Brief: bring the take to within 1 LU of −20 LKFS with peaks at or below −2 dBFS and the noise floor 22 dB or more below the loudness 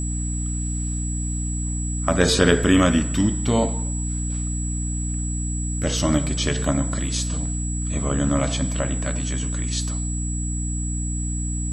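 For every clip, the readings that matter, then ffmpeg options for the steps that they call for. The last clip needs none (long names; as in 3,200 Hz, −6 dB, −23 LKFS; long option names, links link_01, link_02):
mains hum 60 Hz; hum harmonics up to 300 Hz; level of the hum −23 dBFS; interfering tone 7,800 Hz; level of the tone −31 dBFS; integrated loudness −23.5 LKFS; sample peak −2.5 dBFS; target loudness −20.0 LKFS
→ -af "bandreject=frequency=60:width_type=h:width=4,bandreject=frequency=120:width_type=h:width=4,bandreject=frequency=180:width_type=h:width=4,bandreject=frequency=240:width_type=h:width=4,bandreject=frequency=300:width_type=h:width=4"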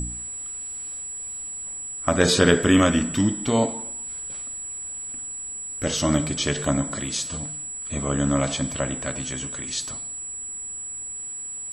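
mains hum none found; interfering tone 7,800 Hz; level of the tone −31 dBFS
→ -af "bandreject=frequency=7800:width=30"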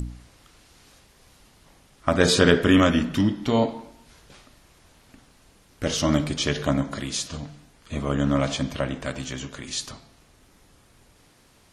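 interfering tone none found; integrated loudness −23.5 LKFS; sample peak −2.5 dBFS; target loudness −20.0 LKFS
→ -af "volume=3.5dB,alimiter=limit=-2dB:level=0:latency=1"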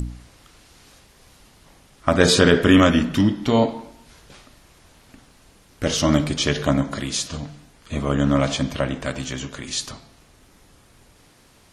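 integrated loudness −20.5 LKFS; sample peak −2.0 dBFS; background noise floor −54 dBFS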